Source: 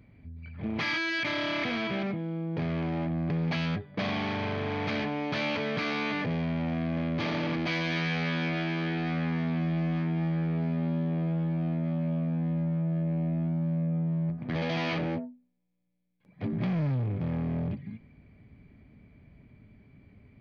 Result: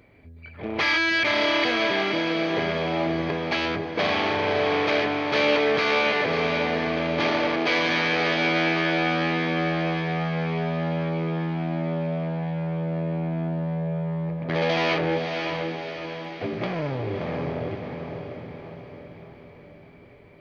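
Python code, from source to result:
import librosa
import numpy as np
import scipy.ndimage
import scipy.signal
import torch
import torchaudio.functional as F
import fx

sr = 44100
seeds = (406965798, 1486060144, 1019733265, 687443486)

p1 = fx.low_shelf_res(x, sr, hz=290.0, db=-10.0, q=1.5)
p2 = p1 + fx.echo_diffused(p1, sr, ms=583, feedback_pct=53, wet_db=-5.0, dry=0)
y = F.gain(torch.from_numpy(p2), 8.0).numpy()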